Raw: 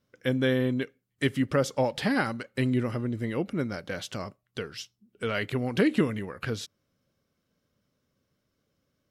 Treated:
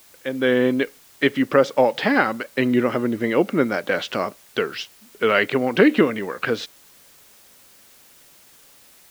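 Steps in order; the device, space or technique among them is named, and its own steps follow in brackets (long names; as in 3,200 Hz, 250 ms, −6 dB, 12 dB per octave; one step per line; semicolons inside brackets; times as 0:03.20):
dictaphone (band-pass filter 290–3,200 Hz; automatic gain control gain up to 14 dB; tape wow and flutter; white noise bed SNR 29 dB)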